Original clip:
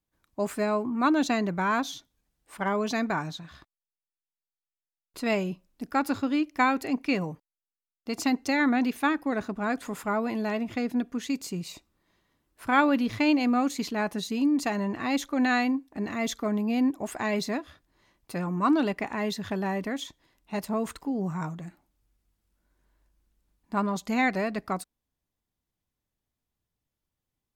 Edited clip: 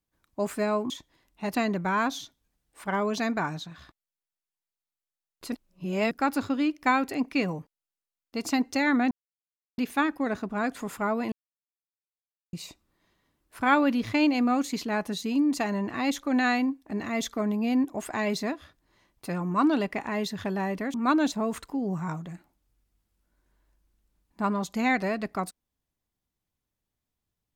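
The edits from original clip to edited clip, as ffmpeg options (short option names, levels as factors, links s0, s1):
-filter_complex "[0:a]asplit=10[s0][s1][s2][s3][s4][s5][s6][s7][s8][s9];[s0]atrim=end=0.902[s10];[s1]atrim=start=19.998:end=20.652[s11];[s2]atrim=start=1.278:end=5.252[s12];[s3]atrim=start=5.248:end=5.842,asetpts=PTS-STARTPTS,areverse[s13];[s4]atrim=start=5.838:end=8.84,asetpts=PTS-STARTPTS,afade=t=out:st=2.998:d=0.004:c=hsin,apad=pad_dur=0.67[s14];[s5]atrim=start=8.84:end=10.38,asetpts=PTS-STARTPTS,afade=t=in:d=0.004:c=hsin,afade=t=out:st=1.536:d=0.004:c=hsin[s15];[s6]atrim=start=10.38:end=11.59,asetpts=PTS-STARTPTS,volume=0[s16];[s7]atrim=start=11.59:end=20.002,asetpts=PTS-STARTPTS,afade=t=in:d=0.004:c=hsin[s17];[s8]atrim=start=0.898:end=1.282[s18];[s9]atrim=start=20.648[s19];[s10][s11]acrossfade=d=0.004:c1=hsin:c2=hsin[s20];[s20][s12]acrossfade=d=0.004:c1=hsin:c2=hsin[s21];[s21][s13]acrossfade=d=0.004:c1=hsin:c2=hsin[s22];[s14][s15][s16][s17]concat=n=4:v=0:a=1[s23];[s22][s23]acrossfade=d=0.004:c1=hsin:c2=hsin[s24];[s24][s18]acrossfade=d=0.004:c1=hsin:c2=hsin[s25];[s25][s19]acrossfade=d=0.004:c1=hsin:c2=hsin"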